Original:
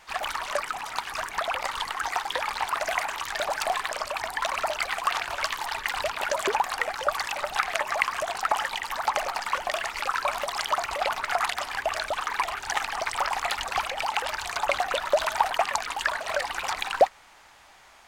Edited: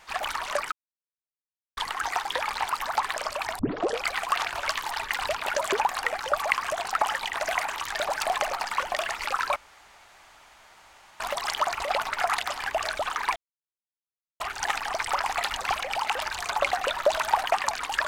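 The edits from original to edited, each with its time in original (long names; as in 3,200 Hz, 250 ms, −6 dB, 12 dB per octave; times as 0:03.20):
0:00.72–0:01.77: silence
0:02.75–0:03.78: swap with 0:08.85–0:09.13
0:04.34: tape start 0.47 s
0:07.18–0:07.93: remove
0:10.31: splice in room tone 1.64 s
0:12.47: splice in silence 1.04 s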